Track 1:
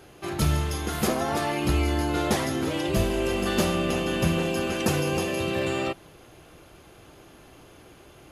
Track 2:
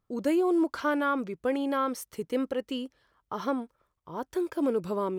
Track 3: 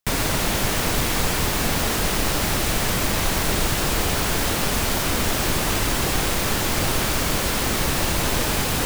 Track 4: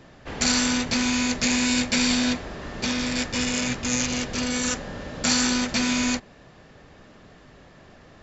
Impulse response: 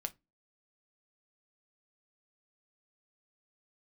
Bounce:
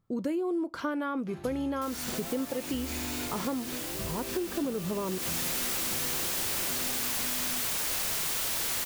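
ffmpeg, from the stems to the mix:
-filter_complex "[0:a]adelay=1050,volume=0.2[s0];[1:a]equalizer=f=150:t=o:w=1.8:g=9,volume=0.668,asplit=3[s1][s2][s3];[s2]volume=0.668[s4];[2:a]equalizer=f=250:t=o:w=0.67:g=-11,equalizer=f=1000:t=o:w=0.67:g=-10,equalizer=f=16000:t=o:w=0.67:g=10,aeval=exprs='(mod(9.44*val(0)+1,2)-1)/9.44':c=same,adelay=1750,volume=0.75,afade=t=in:st=5.03:d=0.44:silence=0.281838[s5];[3:a]adelay=1450,volume=0.168[s6];[s3]apad=whole_len=426886[s7];[s6][s7]sidechaincompress=threshold=0.0141:ratio=8:attack=16:release=168[s8];[4:a]atrim=start_sample=2205[s9];[s4][s9]afir=irnorm=-1:irlink=0[s10];[s0][s1][s5][s8][s10]amix=inputs=5:normalize=0,acompressor=threshold=0.0355:ratio=5"

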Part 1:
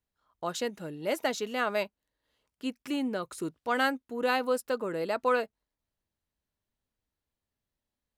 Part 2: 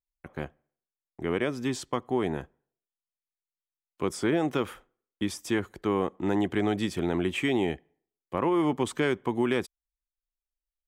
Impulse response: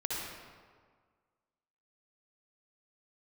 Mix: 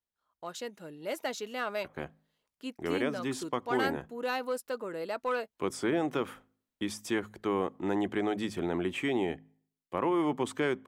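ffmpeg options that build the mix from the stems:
-filter_complex "[0:a]asoftclip=type=tanh:threshold=0.126,volume=0.447[s0];[1:a]bandreject=f=52.59:t=h:w=4,bandreject=f=105.18:t=h:w=4,bandreject=f=157.77:t=h:w=4,bandreject=f=210.36:t=h:w=4,bandreject=f=262.95:t=h:w=4,adynamicequalizer=threshold=0.00631:dfrequency=2000:dqfactor=0.7:tfrequency=2000:tqfactor=0.7:attack=5:release=100:ratio=0.375:range=2:mode=cutabove:tftype=highshelf,adelay=1600,volume=0.531[s1];[s0][s1]amix=inputs=2:normalize=0,lowshelf=f=160:g=-8,dynaudnorm=f=310:g=5:m=1.5"

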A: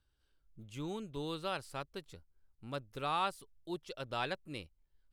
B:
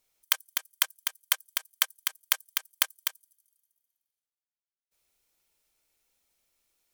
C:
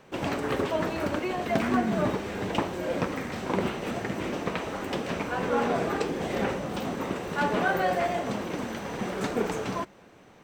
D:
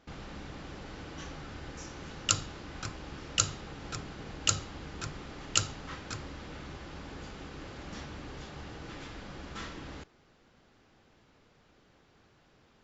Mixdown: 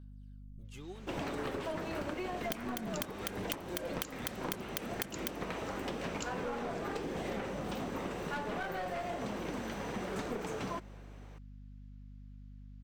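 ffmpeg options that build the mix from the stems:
-filter_complex "[0:a]acompressor=threshold=0.00708:ratio=6,aphaser=in_gain=1:out_gain=1:delay=3:decay=0.56:speed=0.45:type=sinusoidal,volume=0.708[s0];[1:a]adelay=2200,volume=0.708[s1];[2:a]aeval=exprs='clip(val(0),-1,0.0501)':c=same,adelay=950,volume=0.631[s2];[3:a]highpass=1500,adelay=650,volume=0.2[s3];[s0][s1][s2][s3]amix=inputs=4:normalize=0,aeval=exprs='val(0)+0.00355*(sin(2*PI*50*n/s)+sin(2*PI*2*50*n/s)/2+sin(2*PI*3*50*n/s)/3+sin(2*PI*4*50*n/s)/4+sin(2*PI*5*50*n/s)/5)':c=same,acompressor=threshold=0.02:ratio=10"

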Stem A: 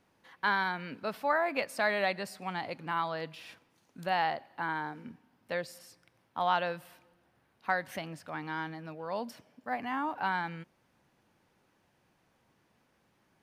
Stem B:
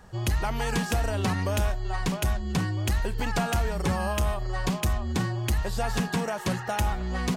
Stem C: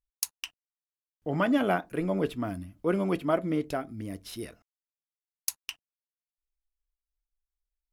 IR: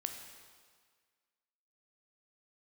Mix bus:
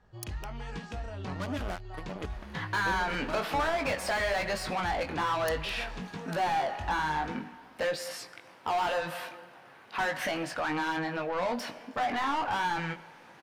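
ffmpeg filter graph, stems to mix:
-filter_complex "[0:a]asplit=2[s0][s1];[s1]highpass=f=720:p=1,volume=31.6,asoftclip=type=tanh:threshold=0.168[s2];[s0][s2]amix=inputs=2:normalize=0,lowpass=f=2600:p=1,volume=0.501,adelay=2300,volume=0.891,asplit=2[s3][s4];[s4]volume=0.178[s5];[1:a]lowpass=4500,volume=0.266,asplit=2[s6][s7];[s7]volume=0.237[s8];[2:a]acrusher=bits=3:mix=0:aa=0.5,volume=0.237[s9];[s3][s6]amix=inputs=2:normalize=0,flanger=delay=18.5:depth=3.3:speed=1.1,acompressor=threshold=0.0224:ratio=2,volume=1[s10];[3:a]atrim=start_sample=2205[s11];[s5][s8]amix=inputs=2:normalize=0[s12];[s12][s11]afir=irnorm=-1:irlink=0[s13];[s9][s10][s13]amix=inputs=3:normalize=0"

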